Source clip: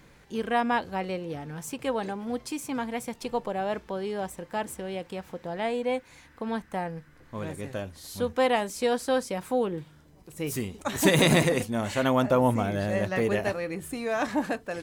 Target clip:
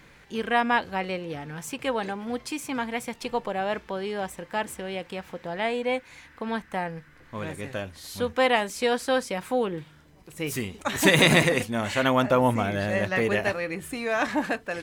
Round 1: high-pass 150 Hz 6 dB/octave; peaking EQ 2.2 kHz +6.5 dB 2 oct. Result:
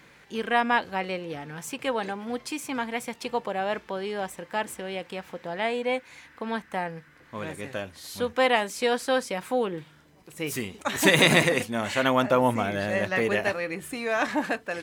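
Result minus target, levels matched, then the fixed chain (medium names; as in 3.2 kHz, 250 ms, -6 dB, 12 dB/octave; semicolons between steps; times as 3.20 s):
125 Hz band -3.0 dB
peaking EQ 2.2 kHz +6.5 dB 2 oct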